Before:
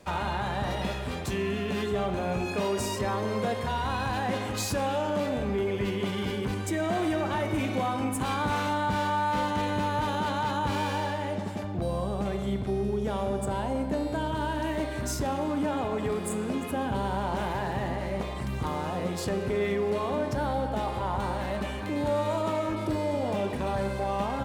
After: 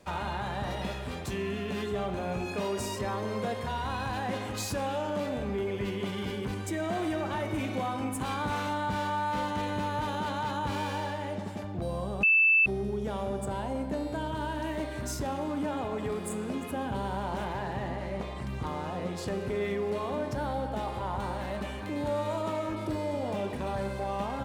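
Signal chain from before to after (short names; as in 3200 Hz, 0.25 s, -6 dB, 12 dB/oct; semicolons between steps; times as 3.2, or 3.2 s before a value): 12.23–12.66 bleep 2640 Hz -15 dBFS; 17.44–19.27 high shelf 9500 Hz -8.5 dB; gain -3.5 dB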